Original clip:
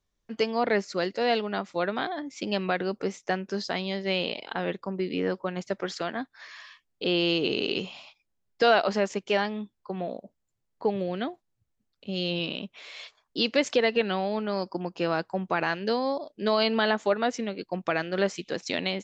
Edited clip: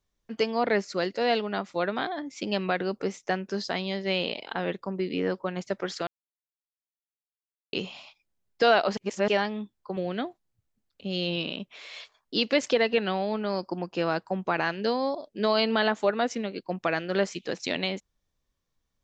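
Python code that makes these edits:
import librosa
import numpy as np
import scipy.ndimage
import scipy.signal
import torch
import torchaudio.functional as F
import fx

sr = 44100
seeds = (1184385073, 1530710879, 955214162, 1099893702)

y = fx.edit(x, sr, fx.silence(start_s=6.07, length_s=1.66),
    fx.reverse_span(start_s=8.97, length_s=0.31),
    fx.cut(start_s=9.97, length_s=1.03), tone=tone)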